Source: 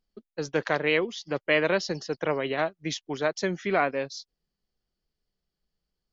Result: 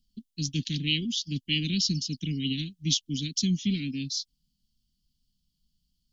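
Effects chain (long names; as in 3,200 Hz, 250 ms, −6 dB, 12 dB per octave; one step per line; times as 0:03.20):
Chebyshev band-stop filter 260–3,000 Hz, order 4
level +9 dB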